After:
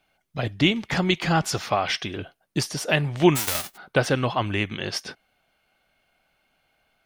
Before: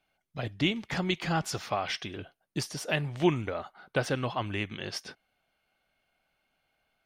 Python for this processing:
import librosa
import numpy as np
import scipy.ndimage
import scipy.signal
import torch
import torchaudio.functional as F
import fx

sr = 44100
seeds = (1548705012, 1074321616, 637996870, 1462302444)

y = fx.envelope_flatten(x, sr, power=0.1, at=(3.35, 3.76), fade=0.02)
y = y * librosa.db_to_amplitude(7.5)